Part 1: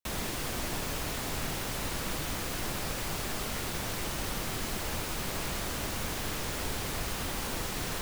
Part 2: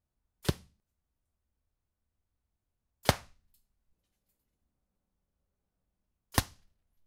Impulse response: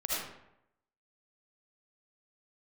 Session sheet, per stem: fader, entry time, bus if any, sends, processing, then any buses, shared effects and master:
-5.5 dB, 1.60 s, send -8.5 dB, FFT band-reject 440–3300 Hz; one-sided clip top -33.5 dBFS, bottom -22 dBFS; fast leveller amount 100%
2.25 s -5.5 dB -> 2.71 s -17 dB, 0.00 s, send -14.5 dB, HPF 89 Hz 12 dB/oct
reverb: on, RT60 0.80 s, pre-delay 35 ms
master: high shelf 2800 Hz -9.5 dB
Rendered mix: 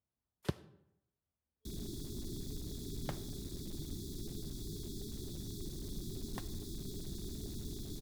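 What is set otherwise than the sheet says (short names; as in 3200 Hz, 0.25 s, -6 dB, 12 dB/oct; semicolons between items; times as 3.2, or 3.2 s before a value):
stem 1: missing fast leveller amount 100%; reverb return -8.5 dB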